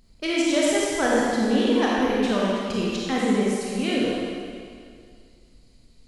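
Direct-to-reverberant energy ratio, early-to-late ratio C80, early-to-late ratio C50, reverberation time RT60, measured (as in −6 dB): −5.5 dB, −1.5 dB, −3.5 dB, 2.2 s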